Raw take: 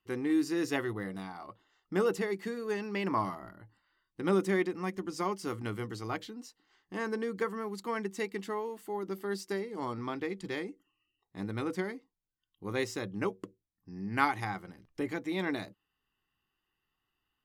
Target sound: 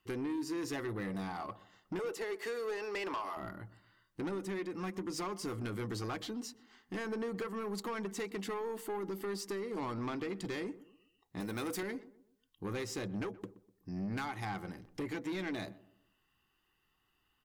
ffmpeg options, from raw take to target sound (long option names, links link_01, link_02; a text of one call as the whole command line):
ffmpeg -i in.wav -filter_complex "[0:a]asettb=1/sr,asplit=3[link_01][link_02][link_03];[link_01]atrim=end=1.994[link_04];[link_02]atrim=start=1.99:end=3.37,asetpts=PTS-STARTPTS,afade=type=in:duration=0.004:curve=qsin,afade=type=out:start_time=1.376:duration=0.004:curve=qsin,highpass=frequency=380:width=0.5412,highpass=frequency=380:width=1.3066[link_05];[link_03]atrim=start=3.366[link_06];[link_04][link_05]acrossfade=duration=0.004:curve1=hsin:curve2=qsin[link_07];[link_07][link_06]acrossfade=duration=0.004:curve1=qsin:curve2=hsin,asettb=1/sr,asplit=3[link_08][link_09][link_10];[link_08]atrim=end=11.404[link_11];[link_09]atrim=start=11.4:end=11.83,asetpts=PTS-STARTPTS,afade=type=in:duration=0.004:curve=qsin,afade=type=out:start_time=0.426:duration=0.004:curve=qsin,aemphasis=mode=production:type=bsi[link_12];[link_10]atrim=start=11.826[link_13];[link_11][link_12]acrossfade=duration=0.004:curve1=hsin:curve2=qsin[link_14];[link_14][link_13]acrossfade=duration=0.004:curve1=qsin:curve2=hsin,acompressor=threshold=-36dB:ratio=10,asoftclip=type=tanh:threshold=-39dB,asplit=2[link_15][link_16];[link_16]adelay=124,lowpass=frequency=1000:poles=1,volume=-16dB,asplit=2[link_17][link_18];[link_18]adelay=124,lowpass=frequency=1000:poles=1,volume=0.41,asplit=2[link_19][link_20];[link_20]adelay=124,lowpass=frequency=1000:poles=1,volume=0.41,asplit=2[link_21][link_22];[link_22]adelay=124,lowpass=frequency=1000:poles=1,volume=0.41[link_23];[link_15][link_17][link_19][link_21][link_23]amix=inputs=5:normalize=0,volume=6dB" out.wav